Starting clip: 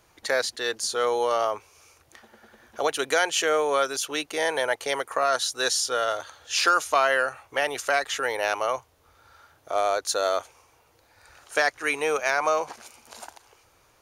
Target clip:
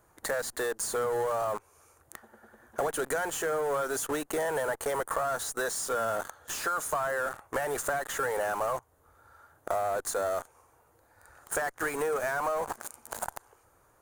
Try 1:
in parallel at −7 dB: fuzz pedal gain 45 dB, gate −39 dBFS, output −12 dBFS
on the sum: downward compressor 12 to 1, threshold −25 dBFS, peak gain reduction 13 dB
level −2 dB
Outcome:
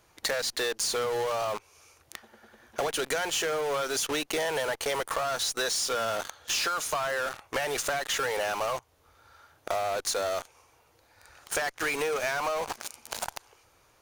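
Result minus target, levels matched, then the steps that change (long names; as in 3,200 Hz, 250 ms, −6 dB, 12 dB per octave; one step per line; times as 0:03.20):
4,000 Hz band +10.5 dB
add after downward compressor: flat-topped bell 3,600 Hz −12.5 dB 1.7 octaves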